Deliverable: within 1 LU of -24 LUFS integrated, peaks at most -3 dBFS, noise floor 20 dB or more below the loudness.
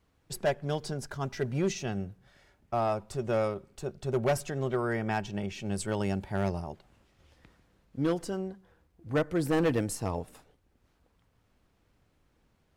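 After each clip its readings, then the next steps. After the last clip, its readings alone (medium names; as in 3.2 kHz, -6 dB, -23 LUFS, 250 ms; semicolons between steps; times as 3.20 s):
clipped samples 0.7%; clipping level -21.0 dBFS; loudness -32.0 LUFS; peak level -21.0 dBFS; loudness target -24.0 LUFS
-> clip repair -21 dBFS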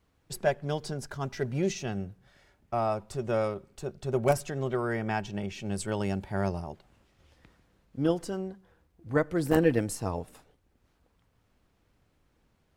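clipped samples 0.0%; loudness -31.0 LUFS; peak level -12.0 dBFS; loudness target -24.0 LUFS
-> trim +7 dB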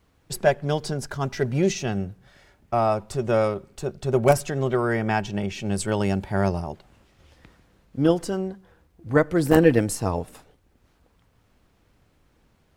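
loudness -24.0 LUFS; peak level -5.0 dBFS; noise floor -64 dBFS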